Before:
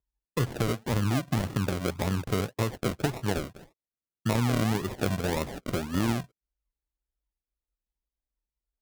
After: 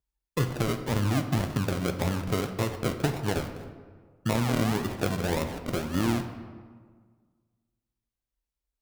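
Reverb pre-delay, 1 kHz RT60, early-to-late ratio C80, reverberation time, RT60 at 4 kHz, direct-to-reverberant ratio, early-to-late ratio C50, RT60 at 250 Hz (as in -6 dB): 4 ms, 1.6 s, 10.5 dB, 1.7 s, 0.95 s, 7.0 dB, 9.0 dB, 1.8 s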